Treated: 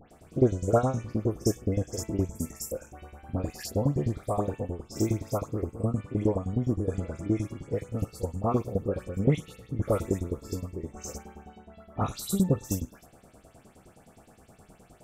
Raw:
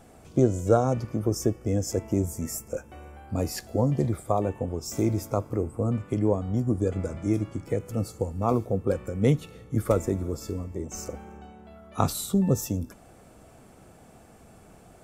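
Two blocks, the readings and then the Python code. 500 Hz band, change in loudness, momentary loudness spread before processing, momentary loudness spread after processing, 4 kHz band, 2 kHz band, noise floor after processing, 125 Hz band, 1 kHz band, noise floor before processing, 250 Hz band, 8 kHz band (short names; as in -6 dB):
-3.0 dB, -2.5 dB, 11 LU, 12 LU, -3.0 dB, -3.0 dB, -58 dBFS, -2.0 dB, -3.0 dB, -53 dBFS, -2.5 dB, -3.0 dB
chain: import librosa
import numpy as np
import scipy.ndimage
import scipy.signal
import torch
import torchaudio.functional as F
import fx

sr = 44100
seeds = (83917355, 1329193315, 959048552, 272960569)

y = fx.spec_steps(x, sr, hold_ms=50)
y = fx.tremolo_shape(y, sr, shape='saw_down', hz=9.6, depth_pct=95)
y = fx.dispersion(y, sr, late='highs', ms=114.0, hz=2300.0)
y = F.gain(torch.from_numpy(y), 3.0).numpy()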